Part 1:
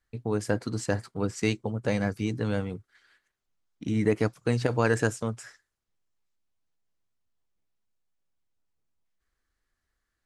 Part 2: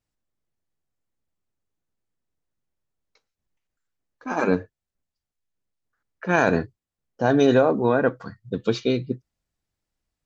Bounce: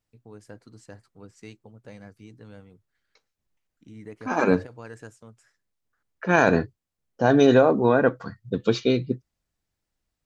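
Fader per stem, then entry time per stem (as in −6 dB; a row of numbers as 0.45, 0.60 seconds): −17.5, +1.0 decibels; 0.00, 0.00 seconds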